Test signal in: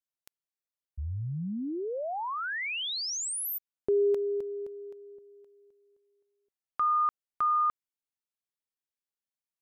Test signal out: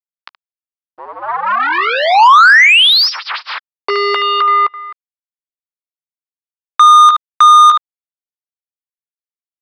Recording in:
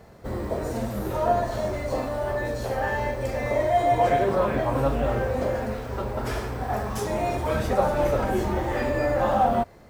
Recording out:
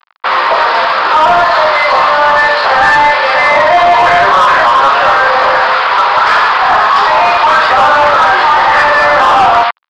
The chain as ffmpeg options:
-filter_complex "[0:a]aecho=1:1:15|73:0.2|0.2,adynamicequalizer=threshold=0.00224:dfrequency=2300:dqfactor=6.8:tfrequency=2300:tqfactor=6.8:attack=5:release=100:ratio=0.375:range=2:mode=cutabove:tftype=bell,acrusher=bits=5:mix=0:aa=0.5,aresample=11025,aresample=44100,highpass=f=1.1k:t=q:w=2.6,asplit=2[a][b];[b]highpass=f=720:p=1,volume=20dB,asoftclip=type=tanh:threshold=-9.5dB[c];[a][c]amix=inputs=2:normalize=0,lowpass=f=3.4k:p=1,volume=-6dB,alimiter=level_in=15dB:limit=-1dB:release=50:level=0:latency=1,volume=-1dB"

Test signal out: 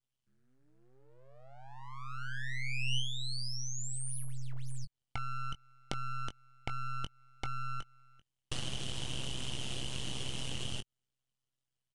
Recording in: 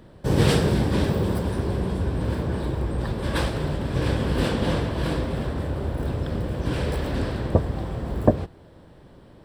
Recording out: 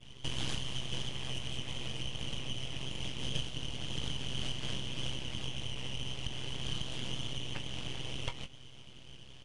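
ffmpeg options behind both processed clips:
-filter_complex "[0:a]highpass=f=1.5k:t=q:w=12,adynamicequalizer=threshold=0.0126:dfrequency=3100:dqfactor=1.1:tfrequency=3100:tqfactor=1.1:attack=5:release=100:ratio=0.375:range=2.5:mode=cutabove:tftype=bell,aeval=exprs='abs(val(0))':c=same,aresample=22050,aresample=44100,tremolo=f=130:d=0.857,asplit=2[a][b];[b]adelay=20,volume=-10dB[c];[a][c]amix=inputs=2:normalize=0,acompressor=threshold=-37dB:ratio=4,volume=4dB"

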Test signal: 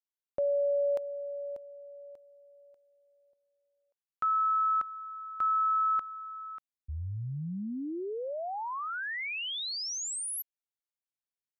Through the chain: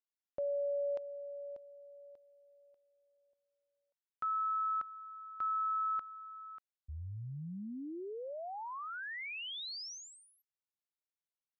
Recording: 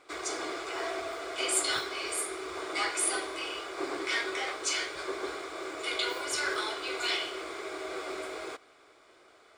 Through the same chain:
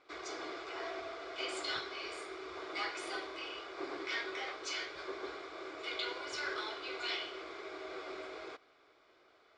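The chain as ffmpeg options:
-af "lowpass=f=5.6k:w=0.5412,lowpass=f=5.6k:w=1.3066,volume=-7dB"

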